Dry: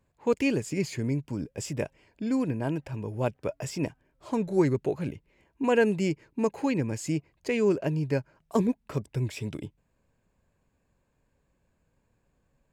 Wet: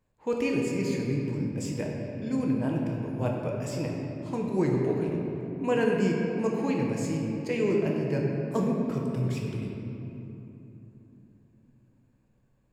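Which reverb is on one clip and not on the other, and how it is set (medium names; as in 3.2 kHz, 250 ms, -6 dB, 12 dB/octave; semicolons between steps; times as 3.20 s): simulated room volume 160 m³, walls hard, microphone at 0.53 m; trim -4.5 dB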